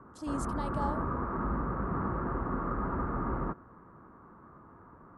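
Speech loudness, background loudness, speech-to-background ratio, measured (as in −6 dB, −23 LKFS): −39.0 LKFS, −34.5 LKFS, −4.5 dB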